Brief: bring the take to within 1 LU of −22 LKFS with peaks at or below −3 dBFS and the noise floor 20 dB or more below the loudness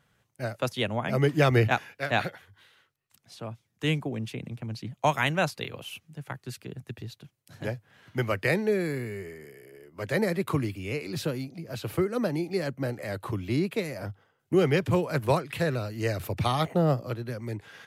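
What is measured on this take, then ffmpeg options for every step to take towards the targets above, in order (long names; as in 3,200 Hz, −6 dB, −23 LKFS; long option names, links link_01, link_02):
integrated loudness −29.0 LKFS; sample peak −11.0 dBFS; target loudness −22.0 LKFS
→ -af "volume=7dB"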